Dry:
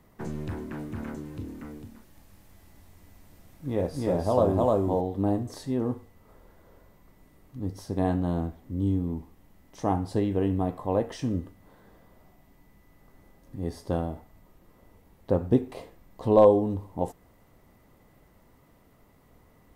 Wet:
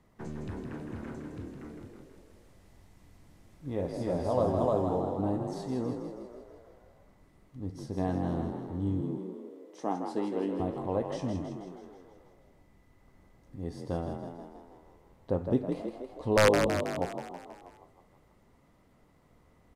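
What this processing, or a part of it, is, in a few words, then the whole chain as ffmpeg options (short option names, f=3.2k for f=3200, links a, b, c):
overflowing digital effects unit: -filter_complex "[0:a]asettb=1/sr,asplit=3[a][b][c];[a]atrim=end=9.014[d];[b]atrim=start=9.01:end=10.6,asetpts=PTS-STARTPTS,afade=t=in:d=0.004:c=qsin,afade=t=out:st=1.586:d=0.004:c=qsin,highpass=f=200:w=0.5412,highpass=f=200:w=1.3066[e];[c]atrim=start=10.596[f];[d][e]acrossfade=d=0.004:c1=hsin:c2=qsin[g];[g][f]acrossfade=d=0.004:c1=qsin:c2=hsin,aeval=exprs='(mod(2.66*val(0)+1,2)-1)/2.66':c=same,lowpass=9.5k,asplit=9[h][i][j][k][l][m][n][o][p];[i]adelay=161,afreqshift=44,volume=-6.5dB[q];[j]adelay=322,afreqshift=88,volume=-11.2dB[r];[k]adelay=483,afreqshift=132,volume=-16dB[s];[l]adelay=644,afreqshift=176,volume=-20.7dB[t];[m]adelay=805,afreqshift=220,volume=-25.4dB[u];[n]adelay=966,afreqshift=264,volume=-30.2dB[v];[o]adelay=1127,afreqshift=308,volume=-34.9dB[w];[p]adelay=1288,afreqshift=352,volume=-39.6dB[x];[h][q][r][s][t][u][v][w][x]amix=inputs=9:normalize=0,volume=-5.5dB"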